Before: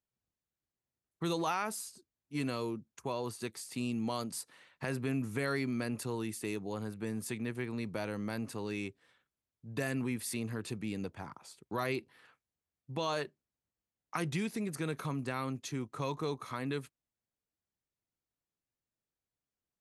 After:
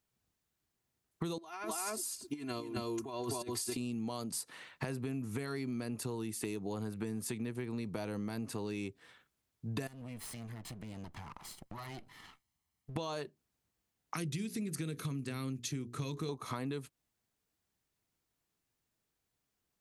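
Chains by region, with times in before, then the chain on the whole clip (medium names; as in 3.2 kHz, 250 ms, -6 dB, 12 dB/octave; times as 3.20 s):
1.38–3.77 s: comb 2.9 ms, depth 87% + delay 256 ms -8 dB + compressor with a negative ratio -39 dBFS, ratio -0.5
9.87–12.96 s: comb filter that takes the minimum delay 0.98 ms + compression, threshold -52 dBFS
14.14–16.29 s: de-esser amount 35% + peaking EQ 850 Hz -14.5 dB 1.4 oct + hum notches 60/120/180/240/300/360/420/480 Hz
whole clip: band-stop 550 Hz, Q 12; dynamic bell 1.8 kHz, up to -6 dB, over -51 dBFS, Q 0.86; compression 12:1, threshold -43 dBFS; trim +8.5 dB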